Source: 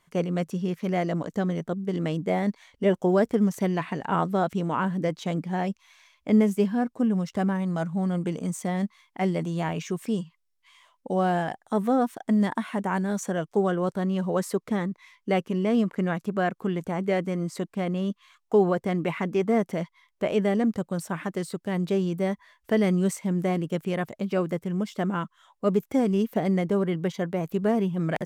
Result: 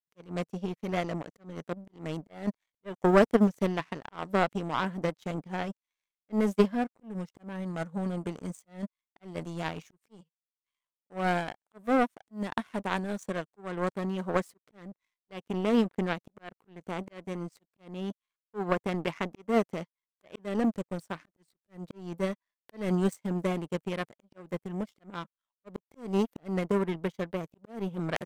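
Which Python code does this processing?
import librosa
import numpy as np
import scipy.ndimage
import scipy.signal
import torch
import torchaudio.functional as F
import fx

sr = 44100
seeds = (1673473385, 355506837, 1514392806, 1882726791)

y = fx.auto_swell(x, sr, attack_ms=221.0)
y = fx.power_curve(y, sr, exponent=2.0)
y = y * librosa.db_to_amplitude(5.5)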